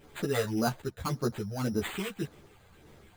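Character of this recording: phasing stages 8, 1.8 Hz, lowest notch 290–4700 Hz; aliases and images of a low sample rate 5500 Hz, jitter 0%; a shimmering, thickened sound

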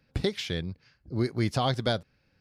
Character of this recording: noise floor -70 dBFS; spectral tilt -5.0 dB/oct

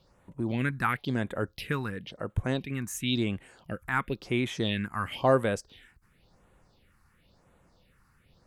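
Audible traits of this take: phasing stages 4, 0.96 Hz, lowest notch 540–4800 Hz

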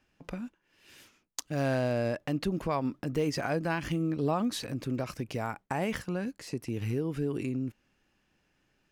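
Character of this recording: noise floor -74 dBFS; spectral tilt -6.0 dB/oct

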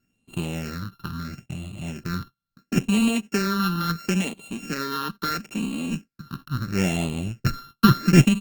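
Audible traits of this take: a buzz of ramps at a fixed pitch in blocks of 32 samples; phasing stages 6, 0.74 Hz, lowest notch 600–1500 Hz; Opus

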